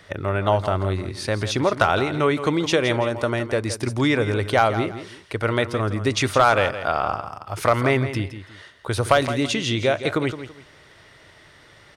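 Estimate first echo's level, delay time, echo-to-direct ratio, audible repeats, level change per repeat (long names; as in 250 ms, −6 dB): −11.5 dB, 166 ms, −11.0 dB, 2, −11.0 dB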